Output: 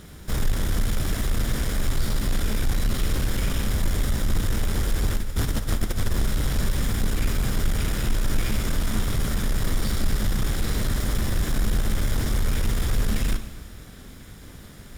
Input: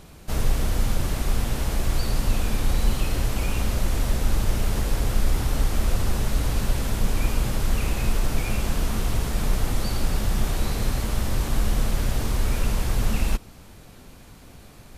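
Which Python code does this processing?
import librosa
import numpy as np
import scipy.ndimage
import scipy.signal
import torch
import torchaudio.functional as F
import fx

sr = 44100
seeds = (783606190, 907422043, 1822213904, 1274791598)

y = fx.lower_of_two(x, sr, delay_ms=0.57)
y = fx.over_compress(y, sr, threshold_db=-24.0, ratio=-0.5, at=(5.17, 6.11))
y = 10.0 ** (-19.5 / 20.0) * np.tanh(y / 10.0 ** (-19.5 / 20.0))
y = fx.rev_plate(y, sr, seeds[0], rt60_s=1.6, hf_ratio=0.9, predelay_ms=0, drr_db=9.5)
y = y * librosa.db_to_amplitude(3.5)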